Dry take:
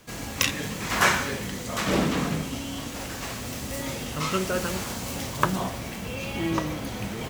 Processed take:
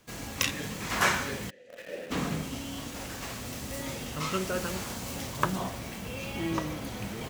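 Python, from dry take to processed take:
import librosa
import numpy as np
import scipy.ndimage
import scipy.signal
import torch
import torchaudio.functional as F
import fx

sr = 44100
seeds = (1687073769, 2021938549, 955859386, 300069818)

p1 = fx.vowel_filter(x, sr, vowel='e', at=(1.49, 2.1), fade=0.02)
p2 = fx.quant_dither(p1, sr, seeds[0], bits=6, dither='none')
p3 = p1 + (p2 * 10.0 ** (-6.0 / 20.0))
y = p3 * 10.0 ** (-8.0 / 20.0)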